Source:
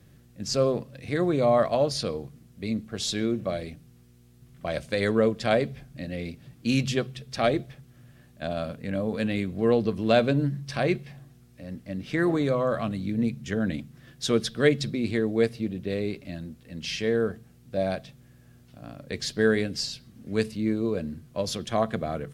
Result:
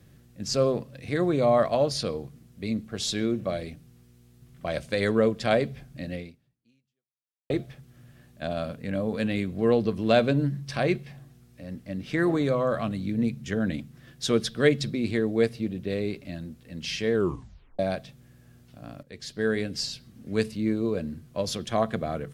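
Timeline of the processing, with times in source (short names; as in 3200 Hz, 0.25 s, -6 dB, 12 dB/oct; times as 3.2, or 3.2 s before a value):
6.15–7.5 fade out exponential
17.14 tape stop 0.65 s
19.03–19.86 fade in, from -14.5 dB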